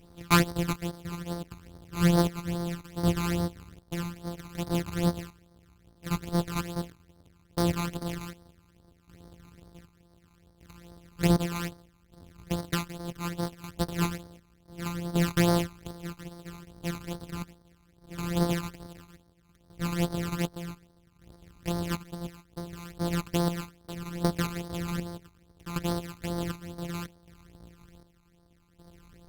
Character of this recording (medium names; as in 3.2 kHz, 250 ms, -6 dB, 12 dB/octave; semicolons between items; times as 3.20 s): a buzz of ramps at a fixed pitch in blocks of 256 samples; chopped level 0.66 Hz, depth 65%, duty 50%; phasing stages 12, 2.4 Hz, lowest notch 540–2600 Hz; Opus